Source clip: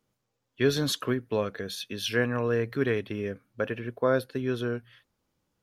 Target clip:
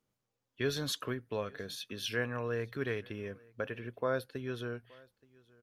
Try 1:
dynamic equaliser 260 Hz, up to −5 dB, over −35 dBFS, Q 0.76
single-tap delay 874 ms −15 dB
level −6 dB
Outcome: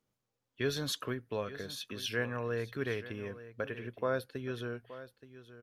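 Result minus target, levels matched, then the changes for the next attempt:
echo-to-direct +10.5 dB
change: single-tap delay 874 ms −25.5 dB

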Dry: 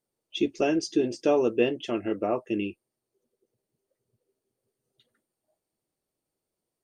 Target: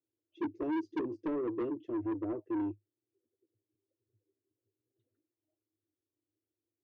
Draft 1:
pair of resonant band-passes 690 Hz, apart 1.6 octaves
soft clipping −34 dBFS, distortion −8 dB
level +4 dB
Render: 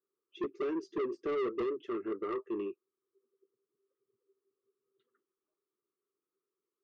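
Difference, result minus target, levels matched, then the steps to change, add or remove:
250 Hz band −4.0 dB
change: pair of resonant band-passes 180 Hz, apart 1.6 octaves

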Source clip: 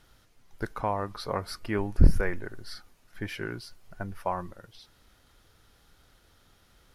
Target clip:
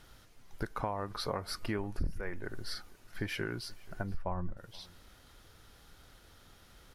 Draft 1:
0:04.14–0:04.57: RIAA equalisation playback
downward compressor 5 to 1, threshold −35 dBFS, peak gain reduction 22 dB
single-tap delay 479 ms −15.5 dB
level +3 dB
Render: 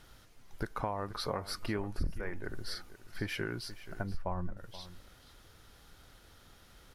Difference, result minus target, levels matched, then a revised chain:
echo-to-direct +9 dB
0:04.14–0:04.57: RIAA equalisation playback
downward compressor 5 to 1, threshold −35 dBFS, peak gain reduction 22 dB
single-tap delay 479 ms −24.5 dB
level +3 dB

